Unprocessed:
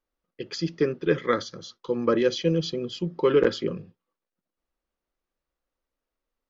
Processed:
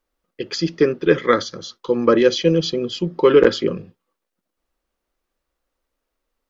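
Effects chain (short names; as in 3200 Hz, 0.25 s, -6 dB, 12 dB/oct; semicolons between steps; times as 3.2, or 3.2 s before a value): bell 140 Hz -4.5 dB 0.82 oct; gain +8 dB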